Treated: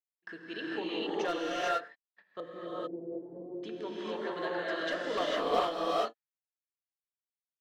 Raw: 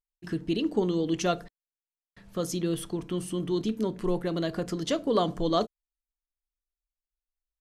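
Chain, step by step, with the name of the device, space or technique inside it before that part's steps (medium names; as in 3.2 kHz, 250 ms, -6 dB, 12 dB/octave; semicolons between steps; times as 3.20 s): megaphone (band-pass 570–3300 Hz; peaking EQ 1.7 kHz +8.5 dB 0.36 oct; hard clipper -22 dBFS, distortion -16 dB); 2.40–3.63 s: elliptic low-pass 680 Hz, stop band 60 dB; gate -51 dBFS, range -21 dB; gated-style reverb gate 480 ms rising, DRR -7 dB; trim -5.5 dB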